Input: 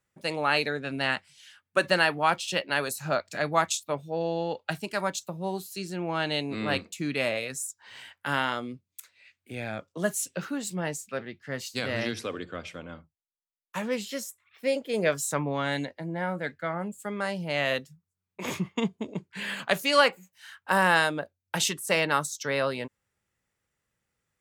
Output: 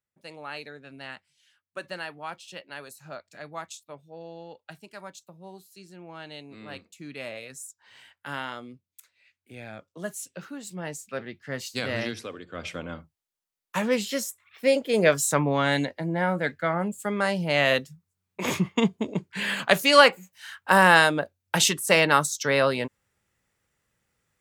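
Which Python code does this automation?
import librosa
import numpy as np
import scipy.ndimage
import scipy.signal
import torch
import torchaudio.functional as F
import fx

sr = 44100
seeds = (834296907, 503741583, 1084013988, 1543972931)

y = fx.gain(x, sr, db=fx.line((6.7, -13.0), (7.65, -6.5), (10.6, -6.5), (11.25, 1.0), (11.96, 1.0), (12.46, -6.5), (12.65, 5.5)))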